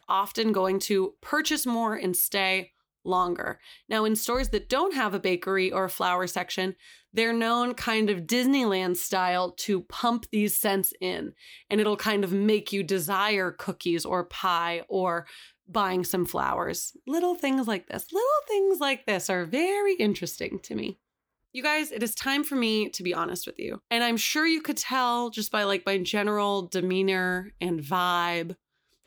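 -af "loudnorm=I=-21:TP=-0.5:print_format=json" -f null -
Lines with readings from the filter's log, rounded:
"input_i" : "-26.7",
"input_tp" : "-10.8",
"input_lra" : "2.5",
"input_thresh" : "-36.9",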